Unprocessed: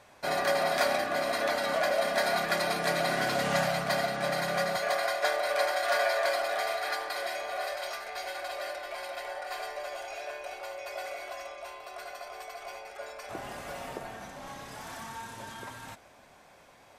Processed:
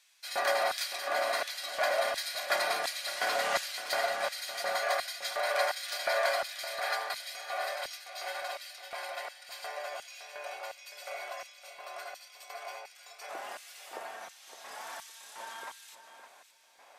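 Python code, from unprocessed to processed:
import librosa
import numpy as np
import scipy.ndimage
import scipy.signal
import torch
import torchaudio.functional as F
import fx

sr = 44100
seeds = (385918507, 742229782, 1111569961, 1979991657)

y = fx.filter_lfo_highpass(x, sr, shape='square', hz=1.4, low_hz=640.0, high_hz=3400.0, q=0.85)
y = fx.echo_feedback(y, sr, ms=563, feedback_pct=16, wet_db=-12.0)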